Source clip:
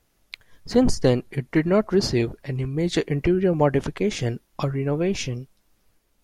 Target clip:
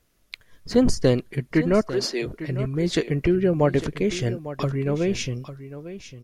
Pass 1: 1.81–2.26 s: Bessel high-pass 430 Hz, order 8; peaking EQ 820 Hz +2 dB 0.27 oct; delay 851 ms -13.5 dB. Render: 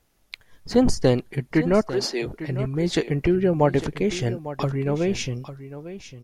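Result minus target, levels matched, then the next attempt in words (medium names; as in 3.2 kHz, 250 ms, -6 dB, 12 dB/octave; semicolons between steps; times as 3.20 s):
1 kHz band +3.5 dB
1.81–2.26 s: Bessel high-pass 430 Hz, order 8; peaking EQ 820 Hz -7.5 dB 0.27 oct; delay 851 ms -13.5 dB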